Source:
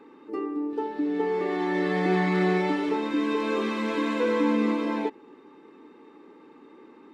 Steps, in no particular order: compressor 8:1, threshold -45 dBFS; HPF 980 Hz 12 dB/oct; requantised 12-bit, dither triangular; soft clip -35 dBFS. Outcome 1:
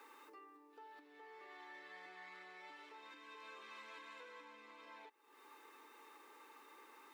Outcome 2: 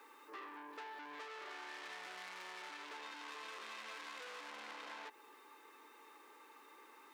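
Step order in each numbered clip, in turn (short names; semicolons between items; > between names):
requantised > compressor > soft clip > HPF; requantised > soft clip > HPF > compressor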